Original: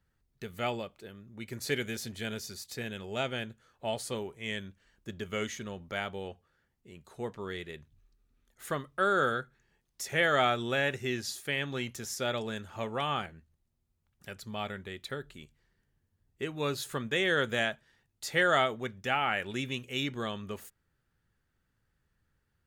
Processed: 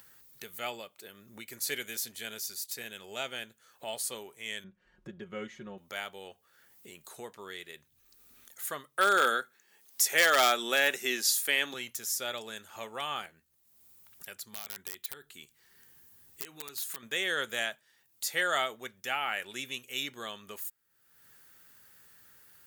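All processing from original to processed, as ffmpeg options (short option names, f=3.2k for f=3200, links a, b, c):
-filter_complex "[0:a]asettb=1/sr,asplit=3[a][b][c];[a]atrim=end=4.644[d];[b]atrim=start=4.64:end=5.78,asetpts=PTS-STARTPTS,afade=t=in:d=0.004:c=qsin,afade=t=out:st=1.136:d=0.004:c=qsin,lowpass=f=1.1k:p=1,aemphasis=mode=reproduction:type=bsi,aecho=1:1:5.5:0.68,atrim=end_sample=50274[e];[c]atrim=start=5.776[f];[d][e]acrossfade=d=0.004:c1=hsin:c2=qsin[g];[g][f]acrossfade=d=0.004:c1=qsin:c2=hsin,asettb=1/sr,asplit=3[h][i][j];[h]atrim=end=8.974[k];[i]atrim=start=8.97:end=11.74,asetpts=PTS-STARTPTS,afade=t=in:d=0.004:c=qsin,afade=t=out:st=2.766:d=0.004:c=qsin,highpass=f=190:w=0.5412,highpass=f=190:w=1.3066,acontrast=72,aeval=exprs='0.266*(abs(mod(val(0)/0.266+3,4)-2)-1)':c=same[l];[j]atrim=start=11.736[m];[k][l]acrossfade=d=0.004:c1=hsin:c2=qsin[n];[n][m]acrossfade=d=0.004:c1=qsin:c2=hsin,asettb=1/sr,asplit=3[o][p][q];[o]atrim=end=14.434[r];[p]atrim=start=14.43:end=17.03,asetpts=PTS-STARTPTS,afade=t=in:d=0.004:c=qsin,afade=t=out:st=2.596:d=0.004:c=qsin,bandreject=f=580:w=5.2,acompressor=threshold=-38dB:ratio=12:attack=3.2:release=140:knee=1:detection=peak,aeval=exprs='(mod(50.1*val(0)+1,2)-1)/50.1':c=same[s];[q]atrim=start=17.026[t];[r][s]acrossfade=d=0.004:c1=hsin:c2=qsin[u];[u][t]acrossfade=d=0.004:c1=qsin:c2=hsin,highpass=f=630:p=1,aemphasis=mode=production:type=50fm,acompressor=mode=upward:threshold=-38dB:ratio=2.5,volume=-2.5dB"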